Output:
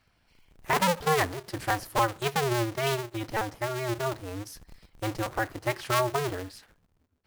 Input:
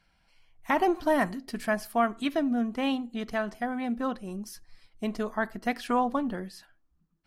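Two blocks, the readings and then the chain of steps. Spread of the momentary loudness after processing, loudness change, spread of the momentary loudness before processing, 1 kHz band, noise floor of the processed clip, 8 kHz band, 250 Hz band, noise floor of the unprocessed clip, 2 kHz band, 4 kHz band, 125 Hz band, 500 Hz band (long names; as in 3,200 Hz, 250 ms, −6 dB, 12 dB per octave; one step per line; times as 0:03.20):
13 LU, +0.5 dB, 13 LU, +1.0 dB, −70 dBFS, +10.5 dB, −7.0 dB, −69 dBFS, +2.5 dB, +6.5 dB, +12.0 dB, +1.0 dB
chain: sub-harmonics by changed cycles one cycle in 2, inverted
floating-point word with a short mantissa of 2 bits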